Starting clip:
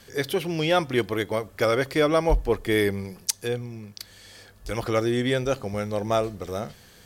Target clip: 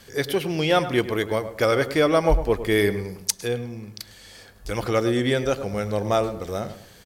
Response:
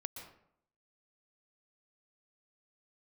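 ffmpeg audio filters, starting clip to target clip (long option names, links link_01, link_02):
-filter_complex "[0:a]asplit=2[link_01][link_02];[link_02]adelay=104,lowpass=frequency=1800:poles=1,volume=-11.5dB,asplit=2[link_03][link_04];[link_04]adelay=104,lowpass=frequency=1800:poles=1,volume=0.37,asplit=2[link_05][link_06];[link_06]adelay=104,lowpass=frequency=1800:poles=1,volume=0.37,asplit=2[link_07][link_08];[link_08]adelay=104,lowpass=frequency=1800:poles=1,volume=0.37[link_09];[link_01][link_03][link_05][link_07][link_09]amix=inputs=5:normalize=0,asplit=2[link_10][link_11];[1:a]atrim=start_sample=2205,atrim=end_sample=6615[link_12];[link_11][link_12]afir=irnorm=-1:irlink=0,volume=-9.5dB[link_13];[link_10][link_13]amix=inputs=2:normalize=0"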